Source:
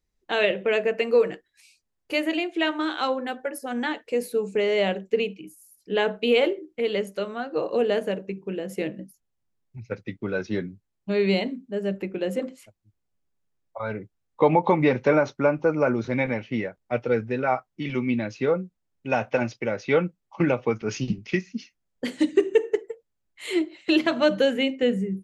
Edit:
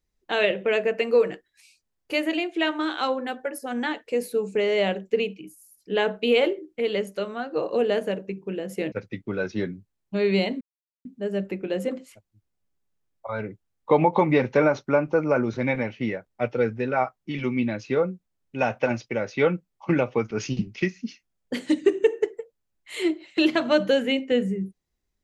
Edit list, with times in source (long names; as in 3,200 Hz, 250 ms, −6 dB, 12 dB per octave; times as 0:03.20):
0:08.92–0:09.87: remove
0:11.56: splice in silence 0.44 s